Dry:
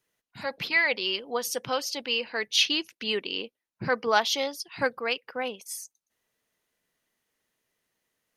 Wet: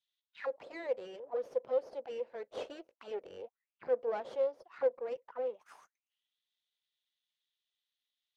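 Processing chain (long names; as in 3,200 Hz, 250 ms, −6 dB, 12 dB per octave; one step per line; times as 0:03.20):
half-wave rectification
envelope filter 520–3,600 Hz, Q 6.7, down, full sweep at −32.5 dBFS
level +7 dB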